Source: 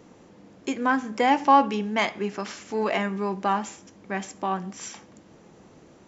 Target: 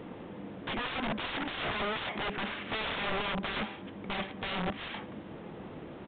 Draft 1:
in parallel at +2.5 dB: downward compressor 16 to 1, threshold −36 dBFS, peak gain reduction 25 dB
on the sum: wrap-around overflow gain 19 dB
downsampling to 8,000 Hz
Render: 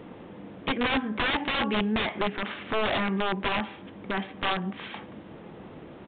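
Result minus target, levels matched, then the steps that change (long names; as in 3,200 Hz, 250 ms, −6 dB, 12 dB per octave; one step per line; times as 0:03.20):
wrap-around overflow: distortion −15 dB
change: wrap-around overflow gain 27 dB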